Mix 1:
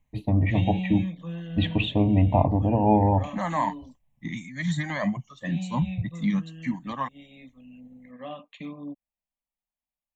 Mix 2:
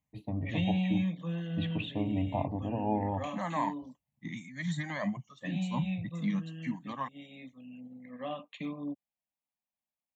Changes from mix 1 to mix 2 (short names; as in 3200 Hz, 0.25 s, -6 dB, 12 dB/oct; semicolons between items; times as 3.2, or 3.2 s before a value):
first voice -11.0 dB; second voice -6.5 dB; master: add HPF 99 Hz